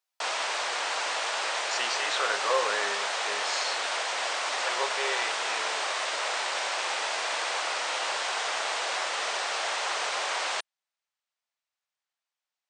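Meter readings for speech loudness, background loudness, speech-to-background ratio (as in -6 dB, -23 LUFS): -32.5 LUFS, -29.0 LUFS, -3.5 dB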